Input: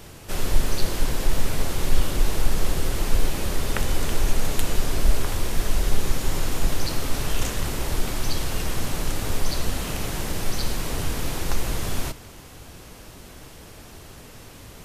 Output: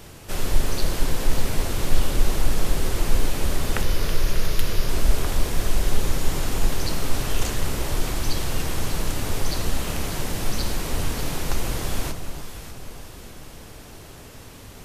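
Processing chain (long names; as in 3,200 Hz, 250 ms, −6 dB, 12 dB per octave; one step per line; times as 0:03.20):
0:03.82–0:04.89: thirty-one-band graphic EQ 250 Hz −10 dB, 800 Hz −9 dB, 5,000 Hz +4 dB, 8,000 Hz −11 dB
delay that swaps between a low-pass and a high-pass 296 ms, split 1,100 Hz, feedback 65%, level −7 dB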